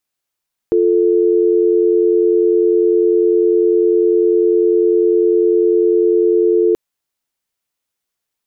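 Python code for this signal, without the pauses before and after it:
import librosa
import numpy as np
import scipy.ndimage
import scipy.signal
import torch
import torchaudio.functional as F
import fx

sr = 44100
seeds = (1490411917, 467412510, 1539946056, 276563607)

y = fx.call_progress(sr, length_s=6.03, kind='dial tone', level_db=-12.5)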